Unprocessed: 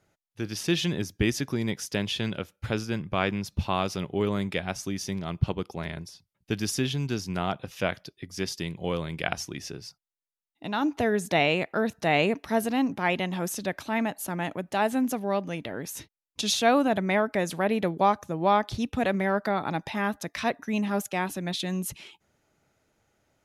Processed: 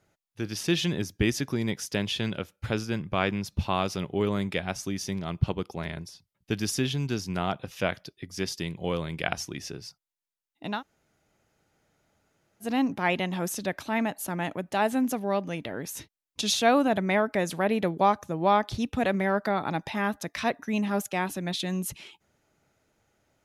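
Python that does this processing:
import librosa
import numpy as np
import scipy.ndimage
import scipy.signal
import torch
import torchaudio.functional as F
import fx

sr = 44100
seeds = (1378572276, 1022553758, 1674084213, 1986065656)

y = fx.edit(x, sr, fx.room_tone_fill(start_s=10.78, length_s=1.87, crossfade_s=0.1), tone=tone)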